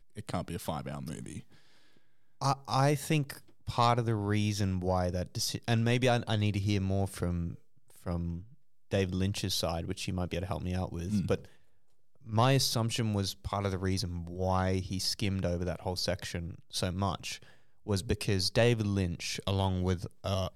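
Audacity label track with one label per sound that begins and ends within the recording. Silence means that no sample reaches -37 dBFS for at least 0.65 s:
2.420000	11.450000	sound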